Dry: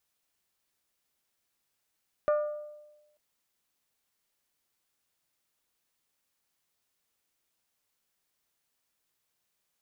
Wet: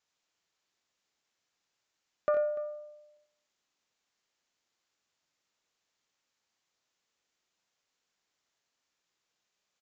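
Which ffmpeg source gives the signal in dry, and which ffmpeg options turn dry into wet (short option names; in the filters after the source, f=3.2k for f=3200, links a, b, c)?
-f lavfi -i "aevalsrc='0.0891*pow(10,-3*t/1.11)*sin(2*PI*598*t)+0.0316*pow(10,-3*t/0.683)*sin(2*PI*1196*t)+0.0112*pow(10,-3*t/0.601)*sin(2*PI*1435.2*t)+0.00398*pow(10,-3*t/0.514)*sin(2*PI*1794*t)+0.00141*pow(10,-3*t/0.421)*sin(2*PI*2392*t)':d=0.89:s=44100"
-filter_complex "[0:a]lowshelf=f=130:g=-9,asplit=2[a][b];[b]aecho=0:1:64|89|293:0.355|0.335|0.133[c];[a][c]amix=inputs=2:normalize=0,aresample=16000,aresample=44100"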